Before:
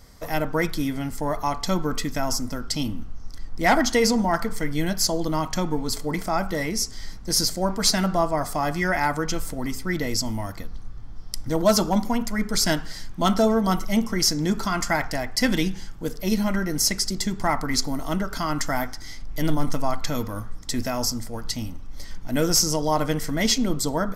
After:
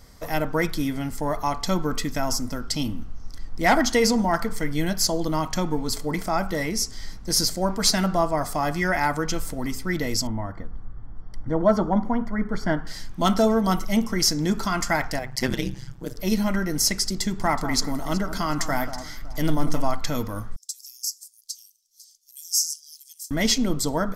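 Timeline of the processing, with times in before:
10.27–12.87 polynomial smoothing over 41 samples
15.19–16.17 AM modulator 130 Hz, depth 95%
17.17–19.92 echo with dull and thin repeats by turns 0.186 s, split 1300 Hz, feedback 54%, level -10.5 dB
20.56–23.31 inverse Chebyshev high-pass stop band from 1300 Hz, stop band 70 dB

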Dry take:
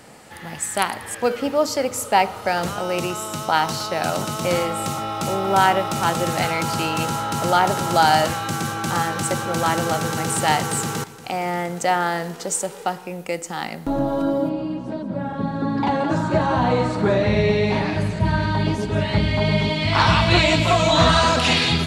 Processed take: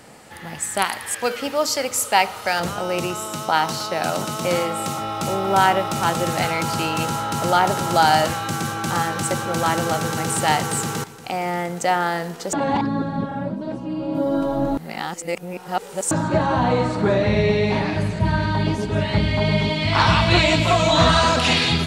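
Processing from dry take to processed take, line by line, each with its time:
0.84–2.6 tilt shelf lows -5.5 dB
3.26–5.01 HPF 120 Hz
12.53–16.11 reverse

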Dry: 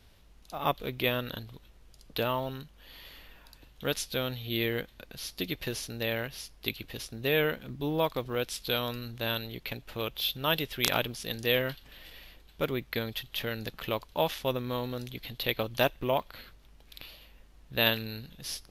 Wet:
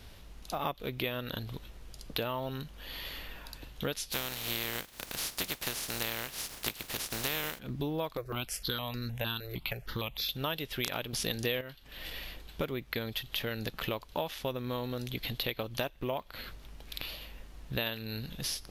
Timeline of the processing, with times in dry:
4.11–7.58 spectral contrast lowered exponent 0.33
8.17–10.29 step phaser 6.5 Hz 860–3000 Hz
11.13–11.61 gain +10 dB
whole clip: compressor 6:1, threshold -40 dBFS; gain +8 dB

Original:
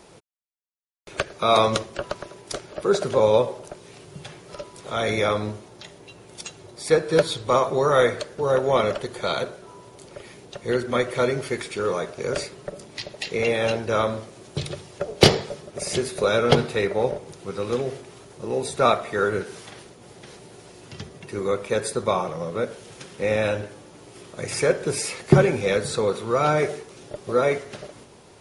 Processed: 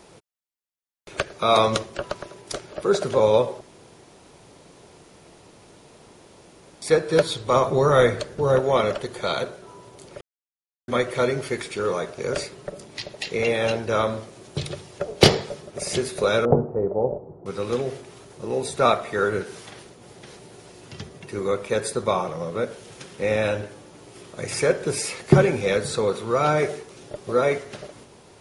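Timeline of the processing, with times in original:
3.61–6.82 room tone
7.56–8.61 low shelf 190 Hz +10 dB
10.21–10.88 mute
16.45–17.46 inverse Chebyshev low-pass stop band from 3800 Hz, stop band 70 dB

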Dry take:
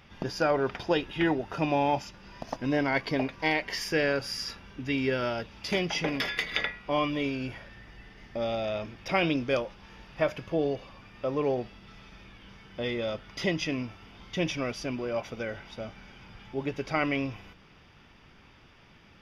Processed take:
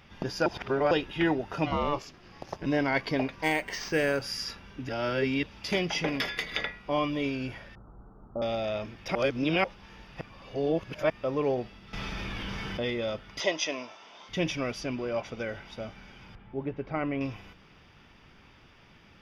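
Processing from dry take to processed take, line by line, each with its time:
0.46–0.91 reverse
1.65–2.65 ring modulator 450 Hz -> 83 Hz
3.43–4.22 decimation joined by straight lines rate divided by 4×
4.89–5.43 reverse
6.25–7.23 bell 2200 Hz -3 dB 1.8 oct
7.75–8.42 steep low-pass 1400 Hz 96 dB/oct
9.15–9.64 reverse
10.21–11.1 reverse
11.93–12.9 fast leveller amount 70%
13.4–14.29 speaker cabinet 440–8700 Hz, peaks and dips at 620 Hz +9 dB, 980 Hz +7 dB, 3600 Hz +5 dB, 6000 Hz +9 dB
14.81–15.39 LPF 8700 Hz
16.35–17.21 tape spacing loss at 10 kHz 42 dB

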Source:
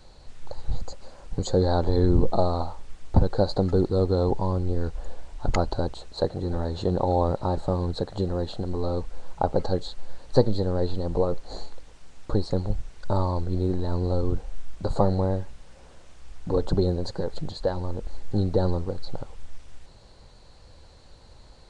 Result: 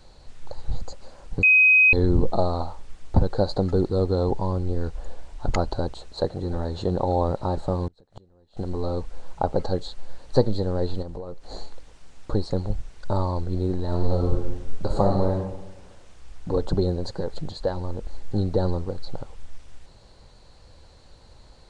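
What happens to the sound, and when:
1.43–1.93 bleep 2520 Hz -12 dBFS
7.87–8.57 flipped gate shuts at -22 dBFS, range -31 dB
11.02–11.53 compressor, threshold -31 dBFS
13.84–15.31 reverb throw, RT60 1.1 s, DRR 2 dB

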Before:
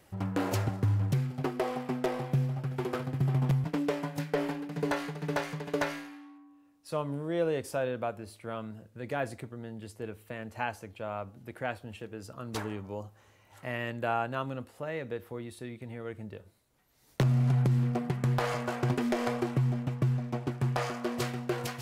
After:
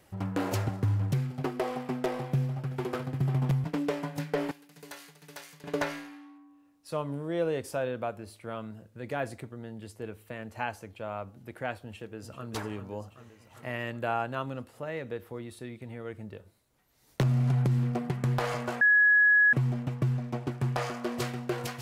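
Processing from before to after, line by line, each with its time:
4.51–5.64 pre-emphasis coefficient 0.9
11.83–12.51 echo throw 0.39 s, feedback 70%, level -9.5 dB
18.81–19.53 bleep 1680 Hz -17.5 dBFS

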